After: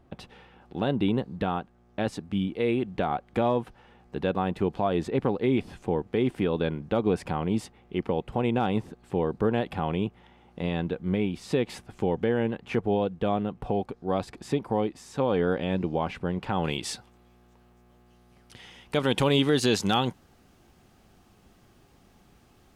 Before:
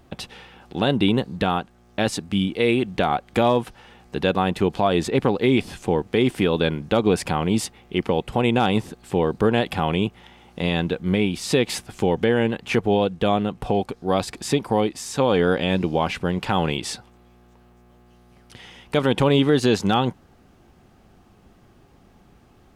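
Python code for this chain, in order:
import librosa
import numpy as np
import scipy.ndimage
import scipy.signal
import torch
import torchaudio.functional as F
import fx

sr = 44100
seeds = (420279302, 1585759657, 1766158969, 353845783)

y = fx.high_shelf(x, sr, hz=2600.0, db=fx.steps((0.0, -11.5), (16.63, 2.0), (19.05, 7.5)))
y = F.gain(torch.from_numpy(y), -5.5).numpy()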